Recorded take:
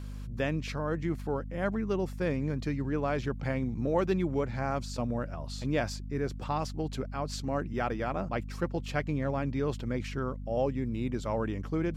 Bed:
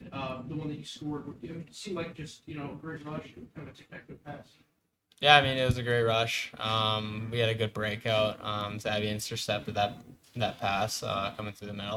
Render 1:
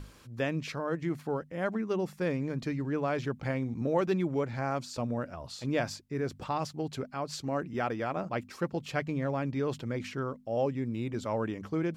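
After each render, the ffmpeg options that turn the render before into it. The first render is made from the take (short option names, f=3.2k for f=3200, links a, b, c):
-af "bandreject=f=50:t=h:w=6,bandreject=f=100:t=h:w=6,bandreject=f=150:t=h:w=6,bandreject=f=200:t=h:w=6,bandreject=f=250:t=h:w=6"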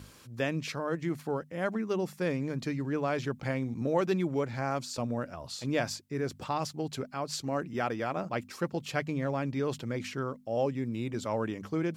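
-af "highpass=75,highshelf=f=4.2k:g=6"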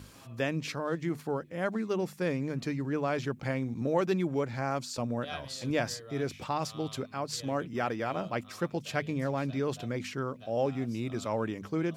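-filter_complex "[1:a]volume=-21.5dB[a];[0:a][a]amix=inputs=2:normalize=0"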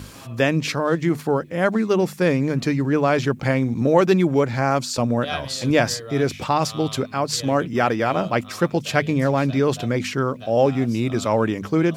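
-af "volume=12dB"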